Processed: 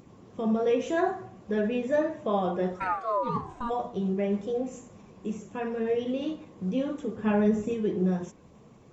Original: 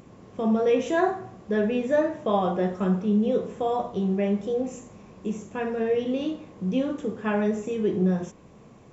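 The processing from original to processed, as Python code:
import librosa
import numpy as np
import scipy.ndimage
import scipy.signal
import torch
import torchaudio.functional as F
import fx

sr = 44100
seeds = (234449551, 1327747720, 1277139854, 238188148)

y = fx.spec_quant(x, sr, step_db=15)
y = fx.ring_mod(y, sr, carrier_hz=fx.line((2.79, 1200.0), (3.69, 460.0)), at=(2.79, 3.69), fade=0.02)
y = fx.low_shelf(y, sr, hz=250.0, db=10.5, at=(7.17, 7.74))
y = F.gain(torch.from_numpy(y), -3.0).numpy()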